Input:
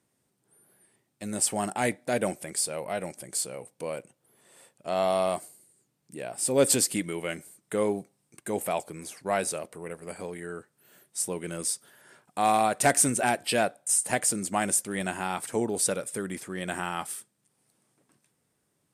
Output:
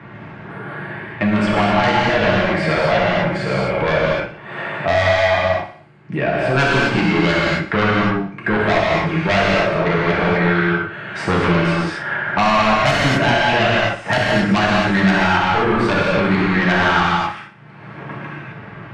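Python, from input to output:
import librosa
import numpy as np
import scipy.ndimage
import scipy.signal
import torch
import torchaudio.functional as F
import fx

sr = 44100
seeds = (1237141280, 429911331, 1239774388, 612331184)

p1 = scipy.signal.sosfilt(scipy.signal.butter(4, 2200.0, 'lowpass', fs=sr, output='sos'), x)
p2 = fx.low_shelf(p1, sr, hz=75.0, db=-9.5)
p3 = fx.rider(p2, sr, range_db=10, speed_s=0.5)
p4 = p2 + F.gain(torch.from_numpy(p3), 2.0).numpy()
p5 = fx.tube_stage(p4, sr, drive_db=10.0, bias=0.2)
p6 = fx.notch_comb(p5, sr, f0_hz=250.0)
p7 = fx.fold_sine(p6, sr, drive_db=10, ceiling_db=-10.0)
p8 = fx.peak_eq(p7, sr, hz=430.0, db=-9.5, octaves=1.5)
p9 = p8 + fx.echo_feedback(p8, sr, ms=61, feedback_pct=43, wet_db=-14.0, dry=0)
p10 = fx.rev_gated(p9, sr, seeds[0], gate_ms=290, shape='flat', drr_db=-6.0)
p11 = fx.band_squash(p10, sr, depth_pct=70)
y = F.gain(torch.from_numpy(p11), -2.5).numpy()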